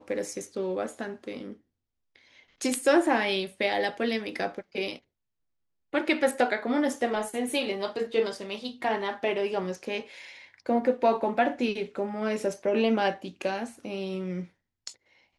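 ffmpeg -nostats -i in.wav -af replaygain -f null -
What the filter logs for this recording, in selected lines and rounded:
track_gain = +8.4 dB
track_peak = 0.208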